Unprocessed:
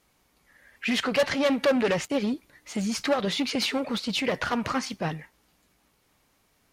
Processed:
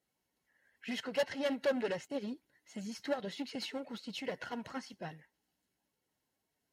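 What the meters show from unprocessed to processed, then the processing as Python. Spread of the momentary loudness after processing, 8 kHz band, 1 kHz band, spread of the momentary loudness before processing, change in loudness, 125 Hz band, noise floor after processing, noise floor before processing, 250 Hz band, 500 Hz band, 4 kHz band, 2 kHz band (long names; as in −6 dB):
14 LU, −15.5 dB, −13.5 dB, 9 LU, −12.0 dB, −15.5 dB, −85 dBFS, −68 dBFS, −13.0 dB, −10.0 dB, −14.0 dB, −13.0 dB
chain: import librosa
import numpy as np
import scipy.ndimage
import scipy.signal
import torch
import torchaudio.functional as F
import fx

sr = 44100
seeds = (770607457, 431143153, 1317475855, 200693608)

y = fx.spec_quant(x, sr, step_db=15)
y = fx.notch_comb(y, sr, f0_hz=1200.0)
y = fx.upward_expand(y, sr, threshold_db=-33.0, expansion=1.5)
y = y * 10.0 ** (-8.0 / 20.0)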